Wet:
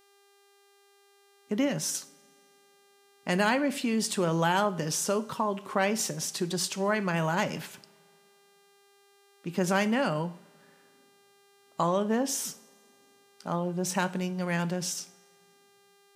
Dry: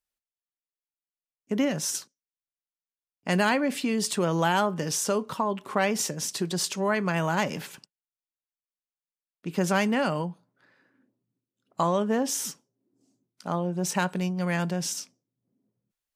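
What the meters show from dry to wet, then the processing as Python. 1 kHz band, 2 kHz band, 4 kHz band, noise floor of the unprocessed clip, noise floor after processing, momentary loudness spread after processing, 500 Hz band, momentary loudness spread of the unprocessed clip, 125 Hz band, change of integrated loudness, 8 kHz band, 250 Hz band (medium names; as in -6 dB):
-2.0 dB, -1.5 dB, -1.5 dB, under -85 dBFS, -62 dBFS, 11 LU, -1.5 dB, 10 LU, -2.0 dB, -2.0 dB, -2.0 dB, -2.0 dB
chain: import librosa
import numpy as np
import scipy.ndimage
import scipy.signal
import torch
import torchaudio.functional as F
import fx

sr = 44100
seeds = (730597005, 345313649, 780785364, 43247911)

y = fx.dmg_buzz(x, sr, base_hz=400.0, harmonics=37, level_db=-61.0, tilt_db=-4, odd_only=False)
y = fx.rev_double_slope(y, sr, seeds[0], early_s=0.49, late_s=2.6, knee_db=-21, drr_db=13.0)
y = y * librosa.db_to_amplitude(-2.0)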